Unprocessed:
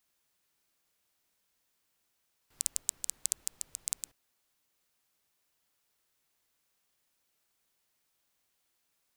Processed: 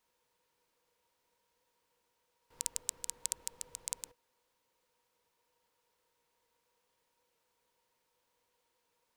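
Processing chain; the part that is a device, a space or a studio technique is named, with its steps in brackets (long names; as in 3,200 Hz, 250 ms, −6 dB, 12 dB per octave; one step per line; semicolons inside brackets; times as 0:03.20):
inside a helmet (high-shelf EQ 5,900 Hz −8 dB; hollow resonant body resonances 490/940 Hz, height 17 dB, ringing for 75 ms)
level +1 dB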